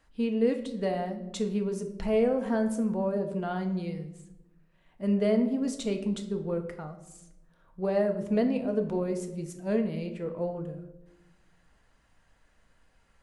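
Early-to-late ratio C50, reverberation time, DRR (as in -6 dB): 10.5 dB, 0.95 s, 4.5 dB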